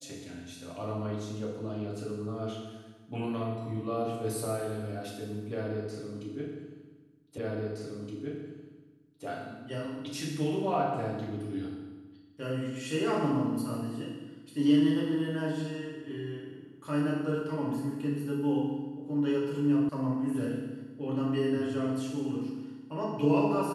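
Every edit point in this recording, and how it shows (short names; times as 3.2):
7.38 repeat of the last 1.87 s
19.89 sound cut off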